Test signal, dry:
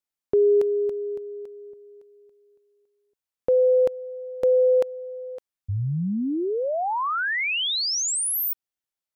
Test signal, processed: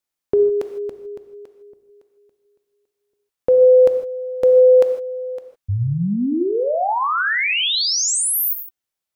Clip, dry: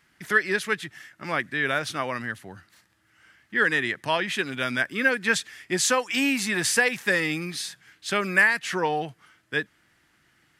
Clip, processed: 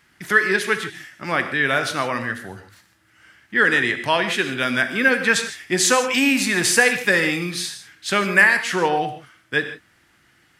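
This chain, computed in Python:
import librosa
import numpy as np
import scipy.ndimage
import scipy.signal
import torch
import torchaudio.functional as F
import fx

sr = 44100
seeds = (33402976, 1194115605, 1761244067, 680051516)

y = fx.rev_gated(x, sr, seeds[0], gate_ms=180, shape='flat', drr_db=7.5)
y = F.gain(torch.from_numpy(y), 5.0).numpy()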